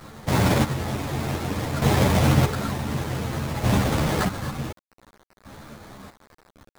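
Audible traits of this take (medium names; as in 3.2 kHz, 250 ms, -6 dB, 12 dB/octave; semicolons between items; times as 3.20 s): aliases and images of a low sample rate 2.8 kHz, jitter 20%; chopped level 0.55 Hz, depth 65%, duty 35%; a quantiser's noise floor 8-bit, dither none; a shimmering, thickened sound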